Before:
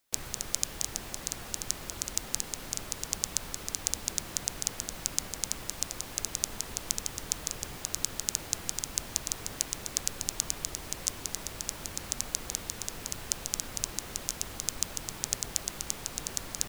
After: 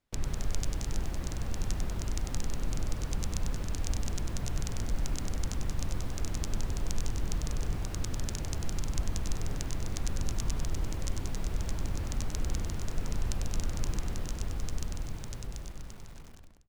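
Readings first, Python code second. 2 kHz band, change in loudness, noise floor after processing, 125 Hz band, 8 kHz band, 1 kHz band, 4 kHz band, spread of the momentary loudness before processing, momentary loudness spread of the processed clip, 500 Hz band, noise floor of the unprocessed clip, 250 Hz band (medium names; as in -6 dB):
-3.5 dB, -3.0 dB, -44 dBFS, +12.0 dB, -12.0 dB, -1.0 dB, -8.5 dB, 4 LU, 3 LU, +1.5 dB, -44 dBFS, +6.0 dB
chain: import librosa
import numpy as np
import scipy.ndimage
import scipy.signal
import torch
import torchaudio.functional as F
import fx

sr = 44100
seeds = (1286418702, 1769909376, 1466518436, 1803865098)

y = fx.fade_out_tail(x, sr, length_s=2.71)
y = fx.riaa(y, sr, side='playback')
y = fx.echo_crushed(y, sr, ms=97, feedback_pct=35, bits=8, wet_db=-5)
y = y * librosa.db_to_amplitude(-2.0)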